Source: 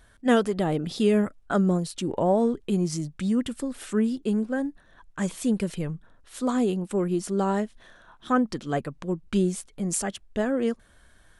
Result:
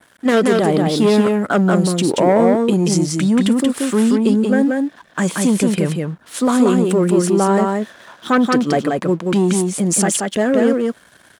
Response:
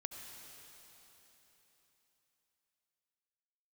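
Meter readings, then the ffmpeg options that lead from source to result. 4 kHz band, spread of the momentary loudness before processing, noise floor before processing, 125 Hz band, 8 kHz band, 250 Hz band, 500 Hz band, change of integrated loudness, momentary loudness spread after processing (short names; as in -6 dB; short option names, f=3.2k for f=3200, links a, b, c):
+12.0 dB, 10 LU, -57 dBFS, +10.0 dB, +13.0 dB, +10.5 dB, +10.5 dB, +10.5 dB, 7 LU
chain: -af "aeval=exprs='0.355*(cos(1*acos(clip(val(0)/0.355,-1,1)))-cos(1*PI/2))+0.0794*(cos(5*acos(clip(val(0)/0.355,-1,1)))-cos(5*PI/2))':c=same,adynamicequalizer=threshold=0.00794:dfrequency=5000:dqfactor=0.73:tfrequency=5000:tqfactor=0.73:attack=5:release=100:ratio=0.375:range=2:mode=cutabove:tftype=bell,alimiter=limit=-16.5dB:level=0:latency=1:release=14,aeval=exprs='sgn(val(0))*max(abs(val(0))-0.00282,0)':c=same,highpass=170,aecho=1:1:181:0.708,volume=8dB"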